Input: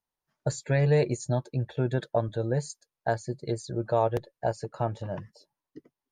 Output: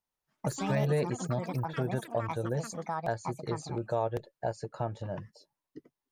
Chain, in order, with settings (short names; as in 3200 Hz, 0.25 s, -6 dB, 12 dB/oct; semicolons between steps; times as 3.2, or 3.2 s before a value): echoes that change speed 0.116 s, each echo +6 st, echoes 3, each echo -6 dB; in parallel at +2.5 dB: compressor, threshold -32 dBFS, peak gain reduction 13.5 dB; on the sum: gain -8.5 dB